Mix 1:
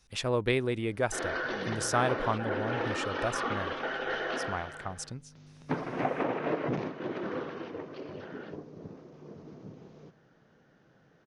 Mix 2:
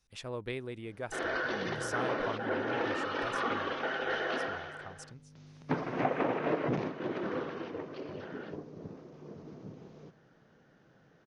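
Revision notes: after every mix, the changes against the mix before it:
speech -10.5 dB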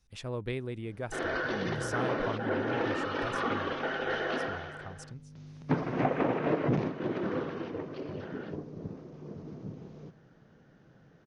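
master: add bass shelf 250 Hz +8.5 dB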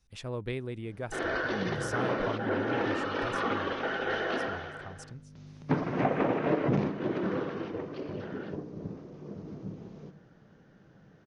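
reverb: on, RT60 0.75 s

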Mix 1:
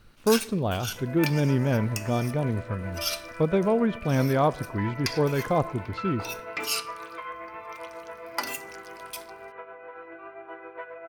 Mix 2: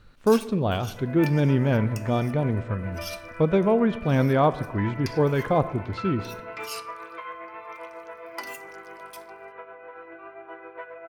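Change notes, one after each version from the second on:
speech: send +8.0 dB; first sound -8.5 dB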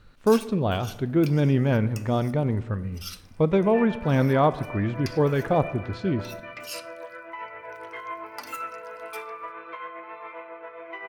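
second sound: entry +2.55 s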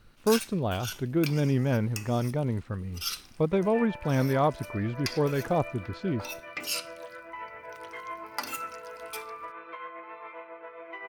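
first sound +6.0 dB; reverb: off

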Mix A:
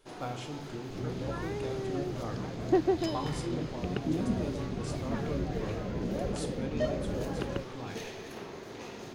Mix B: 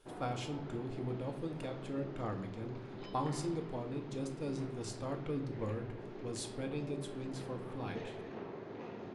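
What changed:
first sound: add tape spacing loss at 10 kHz 37 dB; second sound: muted

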